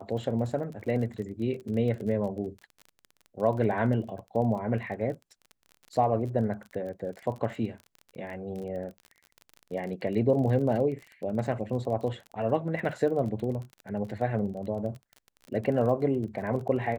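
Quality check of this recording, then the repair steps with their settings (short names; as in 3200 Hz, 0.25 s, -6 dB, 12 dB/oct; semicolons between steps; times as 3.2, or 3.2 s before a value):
crackle 29/s -36 dBFS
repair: de-click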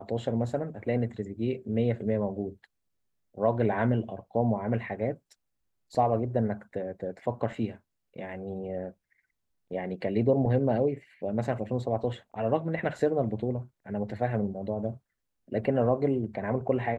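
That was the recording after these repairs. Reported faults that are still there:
none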